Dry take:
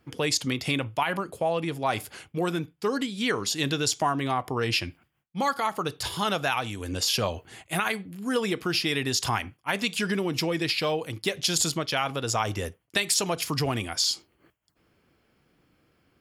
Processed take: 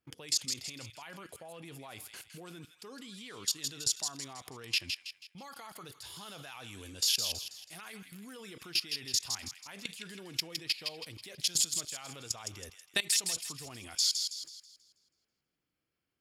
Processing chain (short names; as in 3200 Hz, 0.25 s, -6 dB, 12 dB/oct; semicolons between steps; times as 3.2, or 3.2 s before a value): high shelf 2500 Hz +8.5 dB; level quantiser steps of 20 dB; thin delay 0.162 s, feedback 40%, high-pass 1900 Hz, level -5.5 dB; gain -7.5 dB